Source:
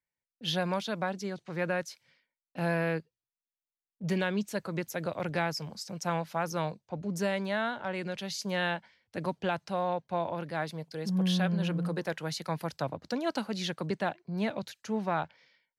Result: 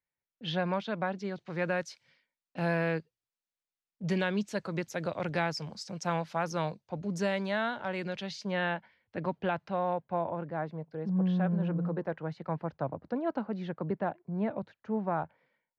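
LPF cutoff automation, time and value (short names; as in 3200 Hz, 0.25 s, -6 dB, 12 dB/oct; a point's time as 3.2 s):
1.07 s 2800 Hz
1.71 s 6600 Hz
7.98 s 6600 Hz
8.63 s 2500 Hz
9.78 s 2500 Hz
10.5 s 1200 Hz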